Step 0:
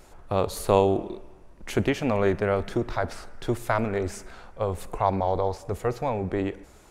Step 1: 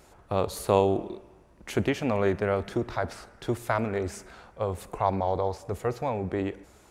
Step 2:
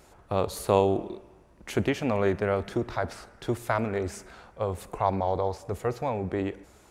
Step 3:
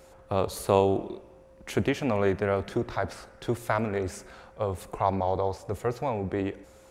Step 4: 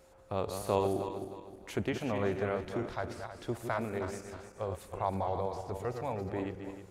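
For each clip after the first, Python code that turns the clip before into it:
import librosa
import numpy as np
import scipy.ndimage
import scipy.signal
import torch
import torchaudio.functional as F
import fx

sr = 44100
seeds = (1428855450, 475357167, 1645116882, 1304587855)

y1 = scipy.signal.sosfilt(scipy.signal.butter(2, 51.0, 'highpass', fs=sr, output='sos'), x)
y1 = y1 * 10.0 ** (-2.0 / 20.0)
y2 = y1
y3 = y2 + 10.0 ** (-54.0 / 20.0) * np.sin(2.0 * np.pi * 530.0 * np.arange(len(y2)) / sr)
y4 = fx.reverse_delay_fb(y3, sr, ms=156, feedback_pct=57, wet_db=-6.5)
y4 = y4 * 10.0 ** (-7.5 / 20.0)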